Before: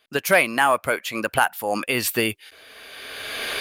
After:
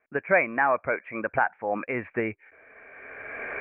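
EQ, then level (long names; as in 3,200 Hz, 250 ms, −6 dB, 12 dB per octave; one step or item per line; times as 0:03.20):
Chebyshev low-pass with heavy ripple 2,400 Hz, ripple 3 dB
−3.0 dB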